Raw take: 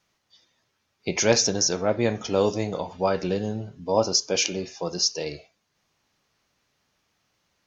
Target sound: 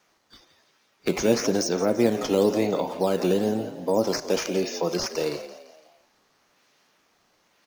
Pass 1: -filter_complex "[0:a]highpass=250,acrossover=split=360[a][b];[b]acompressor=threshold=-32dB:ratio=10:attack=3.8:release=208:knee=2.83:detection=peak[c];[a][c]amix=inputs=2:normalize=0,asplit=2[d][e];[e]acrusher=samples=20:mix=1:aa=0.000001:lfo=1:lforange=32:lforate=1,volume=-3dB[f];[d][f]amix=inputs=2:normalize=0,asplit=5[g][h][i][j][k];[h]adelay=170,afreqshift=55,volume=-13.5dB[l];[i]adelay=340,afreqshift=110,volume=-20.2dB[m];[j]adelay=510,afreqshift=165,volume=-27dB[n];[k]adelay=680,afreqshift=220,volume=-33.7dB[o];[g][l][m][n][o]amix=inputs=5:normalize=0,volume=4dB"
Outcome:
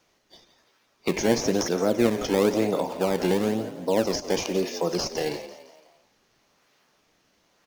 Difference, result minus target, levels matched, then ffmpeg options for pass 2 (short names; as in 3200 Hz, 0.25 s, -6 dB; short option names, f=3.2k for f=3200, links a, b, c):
decimation with a swept rate: distortion +7 dB
-filter_complex "[0:a]highpass=250,acrossover=split=360[a][b];[b]acompressor=threshold=-32dB:ratio=10:attack=3.8:release=208:knee=2.83:detection=peak[c];[a][c]amix=inputs=2:normalize=0,asplit=2[d][e];[e]acrusher=samples=8:mix=1:aa=0.000001:lfo=1:lforange=12.8:lforate=1,volume=-3dB[f];[d][f]amix=inputs=2:normalize=0,asplit=5[g][h][i][j][k];[h]adelay=170,afreqshift=55,volume=-13.5dB[l];[i]adelay=340,afreqshift=110,volume=-20.2dB[m];[j]adelay=510,afreqshift=165,volume=-27dB[n];[k]adelay=680,afreqshift=220,volume=-33.7dB[o];[g][l][m][n][o]amix=inputs=5:normalize=0,volume=4dB"